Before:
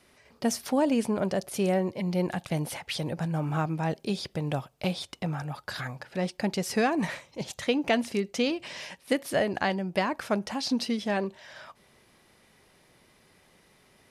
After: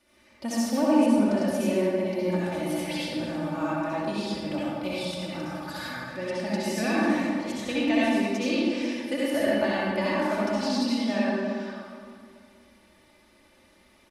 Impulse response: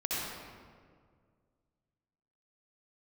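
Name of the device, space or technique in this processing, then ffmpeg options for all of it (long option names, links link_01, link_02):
stairwell: -filter_complex "[0:a]asettb=1/sr,asplit=3[link_01][link_02][link_03];[link_01]atrim=end=4.974[link_04];[link_02]atrim=start=4.97:end=6.02,asetpts=PTS-STARTPTS,afade=type=in:duration=0.004:curve=qsin,afade=type=out:start_time=1.046:duration=0.004:curve=qsin,highshelf=frequency=8500:gain=7[link_05];[link_03]atrim=start=6.016[link_06];[link_04][link_05]acrossfade=duration=0.004:curve1=hsin:curve2=qsin[link_07];[link_07][link_06]acrossfade=duration=0.004:curve1=qsin:curve2=hsin,aecho=1:1:3.4:0.81[link_08];[1:a]atrim=start_sample=2205[link_09];[link_08][link_09]afir=irnorm=-1:irlink=0,aecho=1:1:231|462|693|924|1155:0.112|0.0662|0.0391|0.023|0.0136,volume=-6.5dB"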